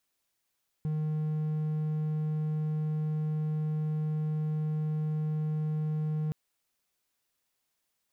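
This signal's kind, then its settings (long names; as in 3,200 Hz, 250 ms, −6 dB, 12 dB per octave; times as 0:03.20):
tone triangle 154 Hz −26 dBFS 5.47 s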